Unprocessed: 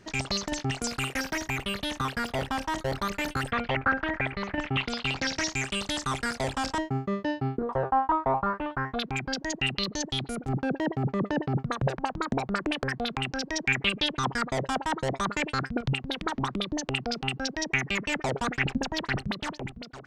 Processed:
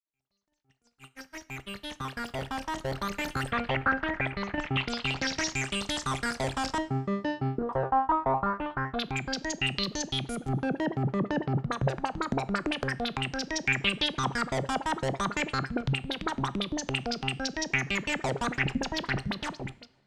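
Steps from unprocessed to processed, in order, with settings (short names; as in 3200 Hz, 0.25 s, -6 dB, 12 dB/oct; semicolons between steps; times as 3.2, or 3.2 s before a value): opening faded in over 3.63 s; gate -38 dBFS, range -31 dB; two-slope reverb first 0.51 s, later 1.9 s, from -16 dB, DRR 16 dB; gain -1 dB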